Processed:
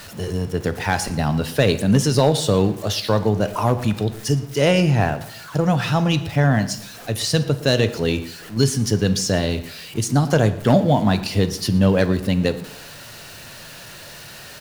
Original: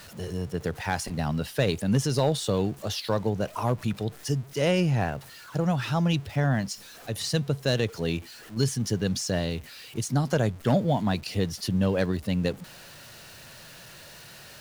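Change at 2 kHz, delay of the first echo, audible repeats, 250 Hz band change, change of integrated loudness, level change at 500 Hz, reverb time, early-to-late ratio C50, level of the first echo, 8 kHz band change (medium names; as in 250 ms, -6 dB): +8.0 dB, 115 ms, 1, +7.5 dB, +7.5 dB, +8.0 dB, 0.85 s, 13.5 dB, -20.5 dB, +8.0 dB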